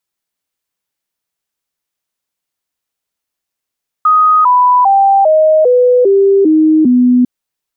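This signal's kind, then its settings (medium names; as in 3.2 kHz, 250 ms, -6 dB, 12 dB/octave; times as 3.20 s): stepped sine 1.25 kHz down, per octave 3, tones 8, 0.40 s, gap 0.00 s -5 dBFS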